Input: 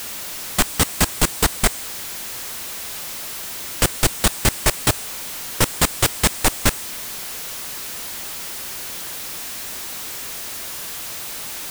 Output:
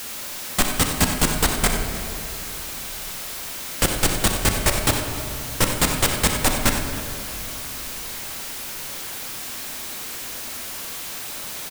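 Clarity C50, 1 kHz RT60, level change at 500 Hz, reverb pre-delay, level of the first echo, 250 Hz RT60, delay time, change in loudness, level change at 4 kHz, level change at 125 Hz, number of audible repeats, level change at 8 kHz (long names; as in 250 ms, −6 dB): 3.0 dB, 2.6 s, 0.0 dB, 4 ms, −11.5 dB, 3.7 s, 61 ms, −1.0 dB, −1.0 dB, 0.0 dB, 3, −1.5 dB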